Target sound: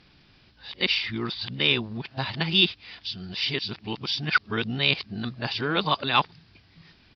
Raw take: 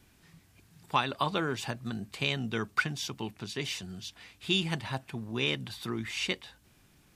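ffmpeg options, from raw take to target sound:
-af "areverse,aresample=11025,aresample=44100,aemphasis=mode=production:type=75fm,volume=5dB"

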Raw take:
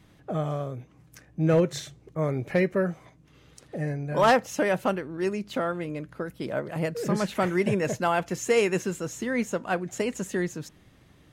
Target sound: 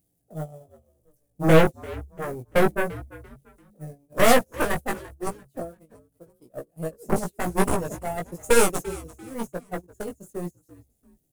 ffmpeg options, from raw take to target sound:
-filter_complex "[0:a]aeval=exprs='val(0)+0.5*0.01*sgn(val(0))':c=same,firequalizer=gain_entry='entry(720,0);entry(1000,-18);entry(9700,13)':delay=0.05:min_phase=1,asplit=2[a][b];[b]acompressor=mode=upward:threshold=-21dB:ratio=2.5,volume=1.5dB[c];[a][c]amix=inputs=2:normalize=0,asoftclip=type=tanh:threshold=-7.5dB,agate=range=-44dB:threshold=-17dB:ratio=16:detection=peak,aeval=exprs='0.422*(cos(1*acos(clip(val(0)/0.422,-1,1)))-cos(1*PI/2))+0.133*(cos(2*acos(clip(val(0)/0.422,-1,1)))-cos(2*PI/2))+0.106*(cos(3*acos(clip(val(0)/0.422,-1,1)))-cos(3*PI/2))+0.0211*(cos(6*acos(clip(val(0)/0.422,-1,1)))-cos(6*PI/2))+0.0668*(cos(7*acos(clip(val(0)/0.422,-1,1)))-cos(7*PI/2))':c=same,asplit=2[d][e];[e]asplit=3[f][g][h];[f]adelay=342,afreqshift=-70,volume=-19dB[i];[g]adelay=684,afreqshift=-140,volume=-28.4dB[j];[h]adelay=1026,afreqshift=-210,volume=-37.7dB[k];[i][j][k]amix=inputs=3:normalize=0[l];[d][l]amix=inputs=2:normalize=0,flanger=delay=16.5:depth=2.4:speed=0.93,volume=4dB"

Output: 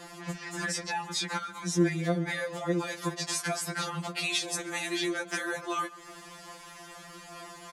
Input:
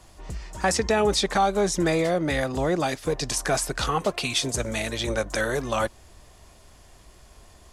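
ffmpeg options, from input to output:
-filter_complex "[0:a]aphaser=in_gain=1:out_gain=1:delay=3.8:decay=0.21:speed=0.54:type=sinusoidal,acompressor=threshold=-35dB:ratio=5,highpass=59,acrossover=split=450|3000[a][b][c];[b]acompressor=threshold=-44dB:ratio=2.5[d];[a][d][c]amix=inputs=3:normalize=0,equalizer=f=1.5k:w=0.82:g=7.5,asplit=2[e][f];[f]adelay=144,lowpass=f=5k:p=1,volume=-19dB,asplit=2[g][h];[h]adelay=144,lowpass=f=5k:p=1,volume=0.54,asplit=2[i][j];[j]adelay=144,lowpass=f=5k:p=1,volume=0.54,asplit=2[k][l];[l]adelay=144,lowpass=f=5k:p=1,volume=0.54[m];[e][g][i][k][m]amix=inputs=5:normalize=0,afftfilt=real='re*2.83*eq(mod(b,8),0)':imag='im*2.83*eq(mod(b,8),0)':win_size=2048:overlap=0.75,volume=7.5dB"

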